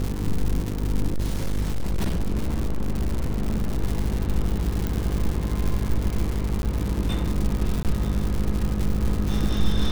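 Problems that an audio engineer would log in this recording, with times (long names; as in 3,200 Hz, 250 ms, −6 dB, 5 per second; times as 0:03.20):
mains buzz 50 Hz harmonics 10 −27 dBFS
surface crackle 240 per second −25 dBFS
0:01.08–0:03.82: clipping −19.5 dBFS
0:04.87: click
0:06.62–0:06.63: drop-out 11 ms
0:07.83–0:07.85: drop-out 18 ms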